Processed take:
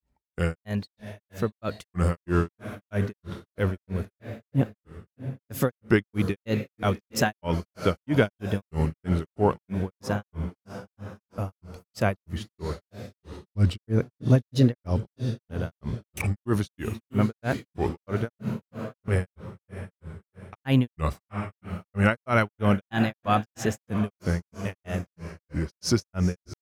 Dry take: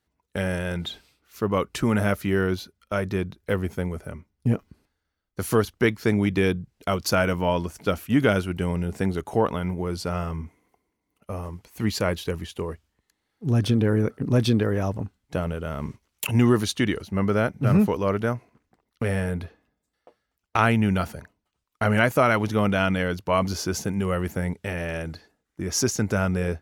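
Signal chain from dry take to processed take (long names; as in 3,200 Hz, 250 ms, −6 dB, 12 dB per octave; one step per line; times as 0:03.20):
low-shelf EQ 150 Hz +7 dB
feedback delay with all-pass diffusion 714 ms, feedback 44%, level −11 dB
granular cloud 235 ms, grains 3.1 per second, pitch spread up and down by 3 semitones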